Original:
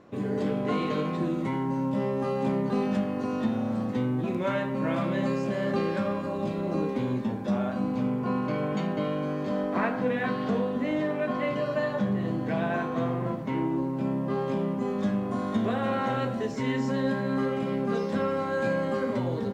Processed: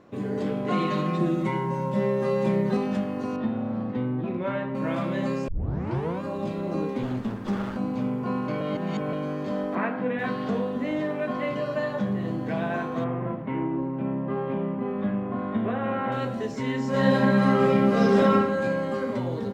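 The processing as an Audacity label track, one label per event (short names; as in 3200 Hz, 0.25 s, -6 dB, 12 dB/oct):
0.700000	2.770000	comb 5.5 ms, depth 98%
3.360000	4.750000	air absorption 260 m
5.480000	5.480000	tape start 0.73 s
7.030000	7.770000	minimum comb delay 0.64 ms
8.610000	9.130000	reverse
9.750000	10.190000	Chebyshev band-pass 170–2600 Hz
13.040000	16.120000	LPF 2800 Hz 24 dB/oct
16.890000	18.320000	reverb throw, RT60 0.95 s, DRR -9 dB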